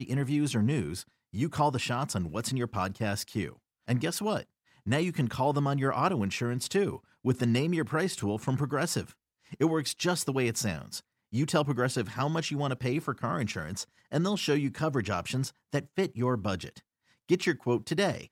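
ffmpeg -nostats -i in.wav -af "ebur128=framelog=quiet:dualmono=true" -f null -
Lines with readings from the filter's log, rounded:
Integrated loudness:
  I:         -27.3 LUFS
  Threshold: -37.6 LUFS
Loudness range:
  LRA:         2.4 LU
  Threshold: -47.7 LUFS
  LRA low:   -28.7 LUFS
  LRA high:  -26.3 LUFS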